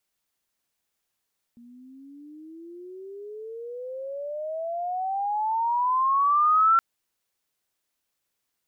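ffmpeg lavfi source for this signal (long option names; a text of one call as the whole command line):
ffmpeg -f lavfi -i "aevalsrc='pow(10,(-15+31*(t/5.22-1))/20)*sin(2*PI*234*5.22/(30.5*log(2)/12)*(exp(30.5*log(2)/12*t/5.22)-1))':duration=5.22:sample_rate=44100" out.wav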